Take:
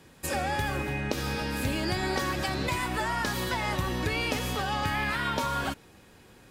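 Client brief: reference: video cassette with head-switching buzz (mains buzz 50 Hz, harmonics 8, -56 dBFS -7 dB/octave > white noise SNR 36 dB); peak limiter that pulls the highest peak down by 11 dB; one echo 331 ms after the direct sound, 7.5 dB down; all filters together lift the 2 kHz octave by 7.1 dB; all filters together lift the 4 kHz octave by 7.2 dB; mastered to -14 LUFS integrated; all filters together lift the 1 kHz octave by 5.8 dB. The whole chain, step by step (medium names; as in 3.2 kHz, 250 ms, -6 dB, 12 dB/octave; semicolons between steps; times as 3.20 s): peaking EQ 1 kHz +5.5 dB; peaking EQ 2 kHz +5.5 dB; peaking EQ 4 kHz +7 dB; peak limiter -17 dBFS; delay 331 ms -7.5 dB; mains buzz 50 Hz, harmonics 8, -56 dBFS -7 dB/octave; white noise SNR 36 dB; trim +11.5 dB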